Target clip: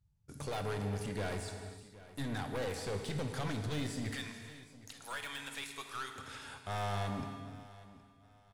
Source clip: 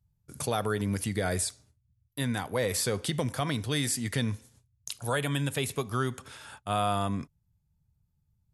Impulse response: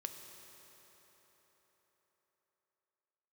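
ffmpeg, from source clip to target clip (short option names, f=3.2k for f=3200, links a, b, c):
-filter_complex "[0:a]lowpass=8.2k,deesser=0.95,asettb=1/sr,asplit=3[a][b][c];[a]atrim=end=4.114[d];[b]atrim=start=4.11:end=6.16,asetpts=PTS-STARTPTS,afade=t=in:d=0.004:c=qsin,afade=t=out:st=2.046:d=0.004:c=qsin,highpass=1.3k[e];[c]atrim=start=6.156[f];[d][e]acrossfade=d=0.004:c1=hsin:c2=qsin[g];[g][f]acrossfade=d=0.004:c1=qsin:c2=hsin,aeval=exprs='(tanh(50.1*val(0)+0.35)-tanh(0.35))/50.1':c=same,aecho=1:1:768|1536|2304:0.126|0.0365|0.0106[h];[1:a]atrim=start_sample=2205,afade=t=out:st=0.38:d=0.01,atrim=end_sample=17199,asetrate=32634,aresample=44100[i];[h][i]afir=irnorm=-1:irlink=0,volume=1dB"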